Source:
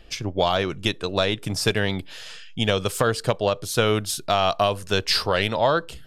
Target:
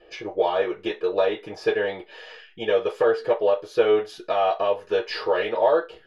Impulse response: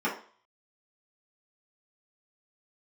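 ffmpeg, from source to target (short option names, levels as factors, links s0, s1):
-filter_complex "[0:a]lowpass=f=1100:p=1,asplit=2[s0][s1];[s1]acompressor=threshold=0.0251:ratio=6,volume=1[s2];[s0][s2]amix=inputs=2:normalize=0[s3];[1:a]atrim=start_sample=2205,asetrate=88200,aresample=44100[s4];[s3][s4]afir=irnorm=-1:irlink=0,volume=0.447"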